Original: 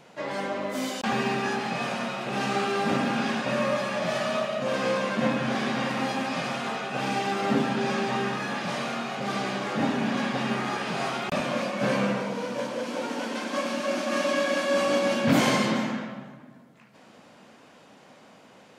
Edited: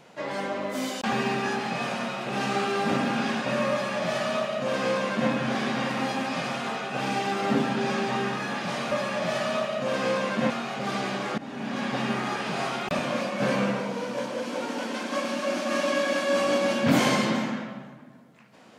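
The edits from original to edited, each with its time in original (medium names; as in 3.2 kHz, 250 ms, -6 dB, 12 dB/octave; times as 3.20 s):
3.71–5.30 s: copy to 8.91 s
9.79–10.37 s: fade in, from -20 dB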